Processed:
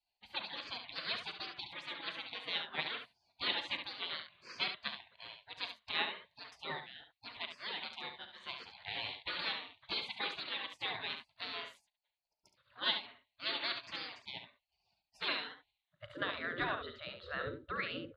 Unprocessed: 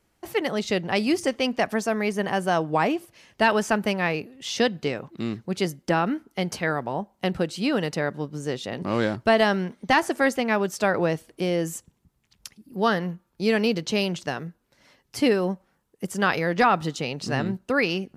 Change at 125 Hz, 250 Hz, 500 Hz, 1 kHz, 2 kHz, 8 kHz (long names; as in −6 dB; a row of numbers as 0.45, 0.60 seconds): −26.0 dB, −27.5 dB, −24.5 dB, −18.5 dB, −13.0 dB, below −30 dB